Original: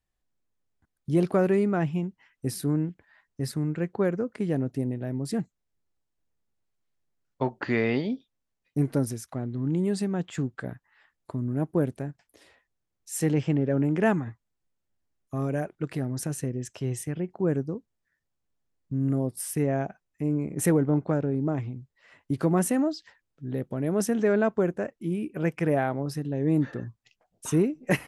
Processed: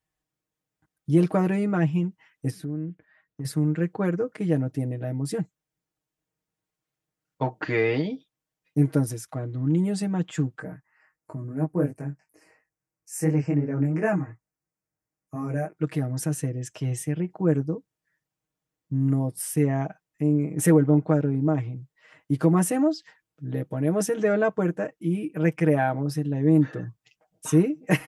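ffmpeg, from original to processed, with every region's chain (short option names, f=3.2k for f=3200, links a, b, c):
-filter_complex "[0:a]asettb=1/sr,asplit=3[a][b][c];[a]atrim=end=2.504[d];[b]atrim=start=2.5:end=3.45,asetpts=PTS-STARTPTS,afade=t=in:d=0.004:c=qsin,afade=t=out:st=0.946:d=0.004:c=qsin,lowpass=f=1.6k:p=1,equalizer=f=880:t=o:w=0.59:g=-7,acompressor=threshold=-33dB:ratio=4:attack=3.2:release=140:knee=1:detection=peak[e];[c]atrim=start=3.446[f];[d][e]acrossfade=d=0.004:c1=hsin:c2=qsin[g];[g][f]acrossfade=d=0.004:c1=qsin:c2=hsin,asettb=1/sr,asplit=3[h][i][j];[h]atrim=end=10.594[k];[i]atrim=start=10.59:end=15.77,asetpts=PTS-STARTPTS,afade=t=in:d=0.004:c=qsin,afade=t=out:st=5.176:d=0.004:c=qsin,flanger=delay=18.5:depth=3.5:speed=2.9,asuperstop=centerf=3500:order=4:qfactor=1.6[l];[j]atrim=start=15.766[m];[k][l]acrossfade=d=0.004:c1=hsin:c2=qsin[n];[n][m]acrossfade=d=0.004:c1=qsin:c2=hsin,highpass=60,equalizer=f=4.2k:t=o:w=0.37:g=-3,aecho=1:1:6.4:0.82"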